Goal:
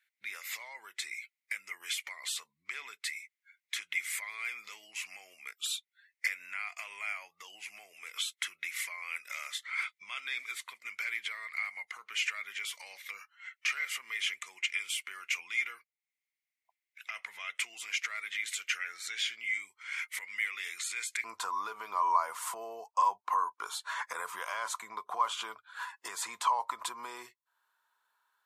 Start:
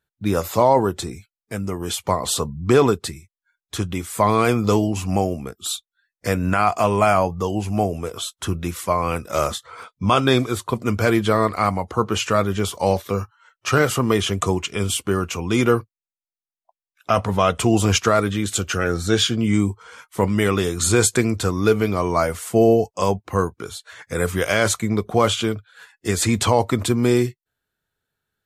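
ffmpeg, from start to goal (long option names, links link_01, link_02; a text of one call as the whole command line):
ffmpeg -i in.wav -af "acompressor=threshold=-35dB:ratio=3,alimiter=level_in=2dB:limit=-24dB:level=0:latency=1:release=109,volume=-2dB,asetnsamples=nb_out_samples=441:pad=0,asendcmd='21.24 highpass f 1000',highpass=frequency=2100:width_type=q:width=9.6" out.wav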